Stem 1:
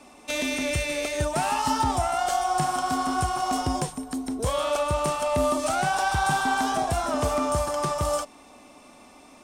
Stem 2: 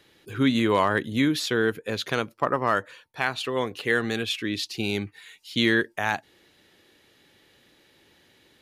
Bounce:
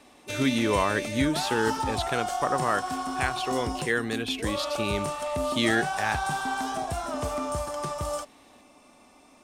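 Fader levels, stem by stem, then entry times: -5.5, -3.0 dB; 0.00, 0.00 s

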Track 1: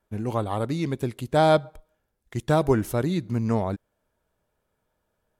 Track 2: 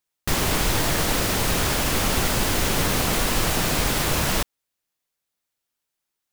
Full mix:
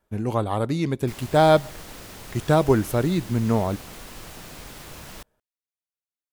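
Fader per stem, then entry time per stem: +2.5, -18.5 dB; 0.00, 0.80 s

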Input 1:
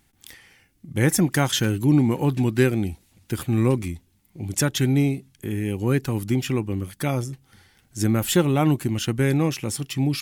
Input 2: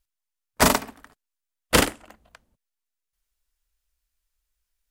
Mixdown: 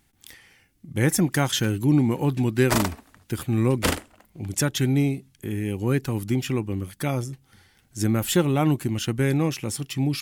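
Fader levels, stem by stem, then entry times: -1.5, -6.0 dB; 0.00, 2.10 s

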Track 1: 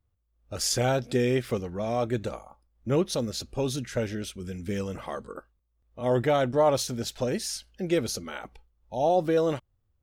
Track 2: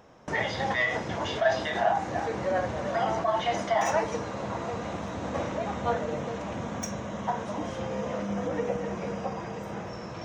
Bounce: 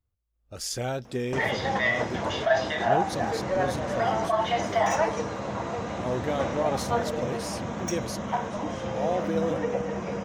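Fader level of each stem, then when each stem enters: -5.5, +1.5 dB; 0.00, 1.05 s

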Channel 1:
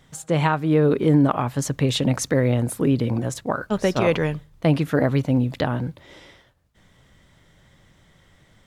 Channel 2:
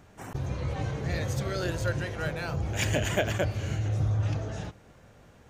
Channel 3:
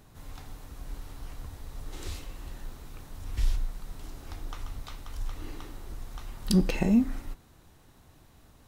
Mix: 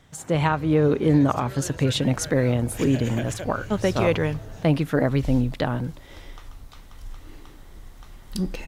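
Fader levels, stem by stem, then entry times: -1.5, -6.5, -4.0 dB; 0.00, 0.00, 1.85 s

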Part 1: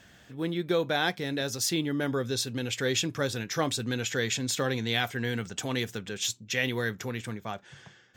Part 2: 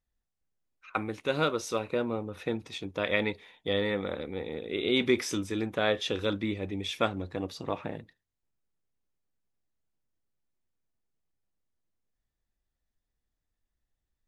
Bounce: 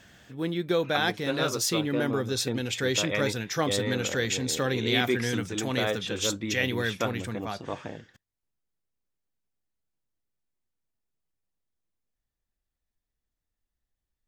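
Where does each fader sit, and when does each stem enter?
+1.0, -2.0 dB; 0.00, 0.00 s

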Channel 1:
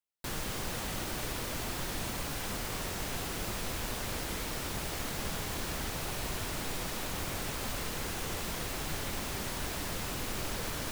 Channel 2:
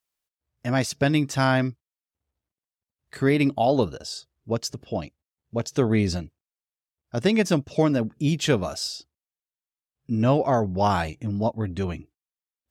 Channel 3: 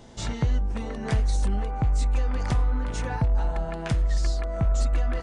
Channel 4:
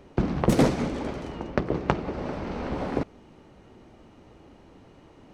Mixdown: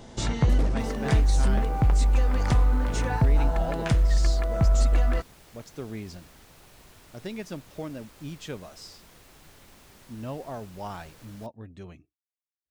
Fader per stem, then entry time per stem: -16.5, -15.5, +2.5, -13.5 dB; 0.55, 0.00, 0.00, 0.00 s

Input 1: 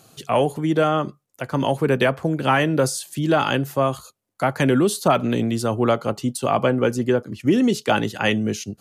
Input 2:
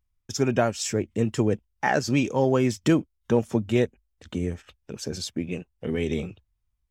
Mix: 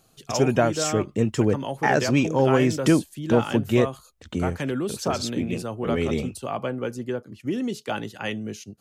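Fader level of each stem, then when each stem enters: -9.5, +2.0 dB; 0.00, 0.00 s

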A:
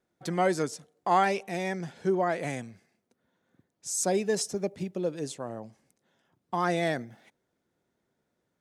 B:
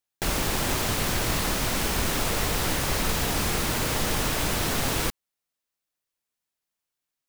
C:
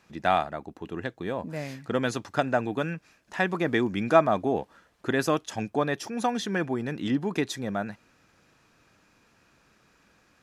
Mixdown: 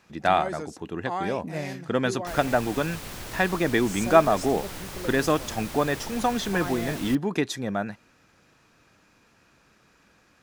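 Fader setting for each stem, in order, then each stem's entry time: -7.5, -12.0, +2.0 dB; 0.00, 2.05, 0.00 s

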